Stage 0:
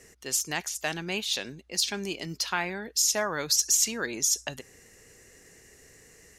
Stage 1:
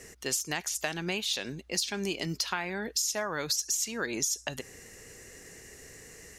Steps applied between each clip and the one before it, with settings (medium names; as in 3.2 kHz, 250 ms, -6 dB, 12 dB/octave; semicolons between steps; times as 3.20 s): compression 6:1, threshold -33 dBFS, peak gain reduction 13 dB; trim +5 dB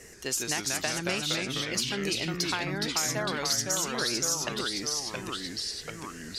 ever faster or slower copies 124 ms, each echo -2 st, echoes 3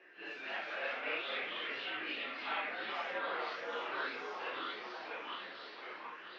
phase randomisation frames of 200 ms; echo whose repeats swap between lows and highs 473 ms, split 1.2 kHz, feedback 75%, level -9 dB; mistuned SSB -84 Hz 540–3200 Hz; trim -4.5 dB